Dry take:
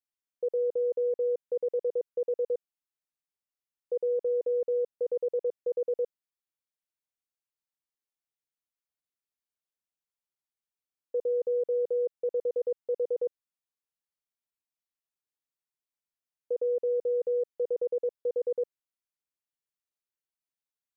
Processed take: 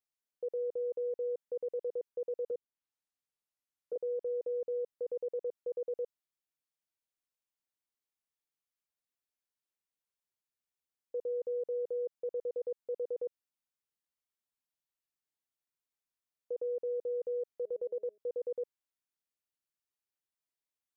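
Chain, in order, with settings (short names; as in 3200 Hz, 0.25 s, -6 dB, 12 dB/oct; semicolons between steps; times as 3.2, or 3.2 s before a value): 2.45–3.96 treble ducked by the level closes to 580 Hz, closed at -32.5 dBFS; 17.49–18.18 de-hum 209.5 Hz, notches 3; limiter -29 dBFS, peak gain reduction 5.5 dB; gain -2 dB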